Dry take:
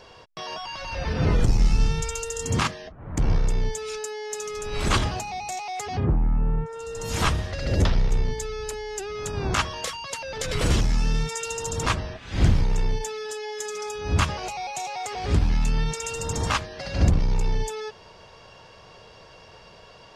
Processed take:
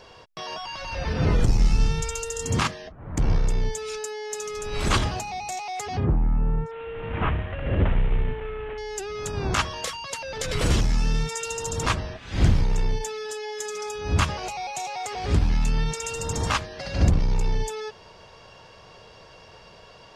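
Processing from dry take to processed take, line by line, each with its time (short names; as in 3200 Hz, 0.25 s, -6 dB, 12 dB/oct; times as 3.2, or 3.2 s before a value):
6.71–8.78 CVSD 16 kbps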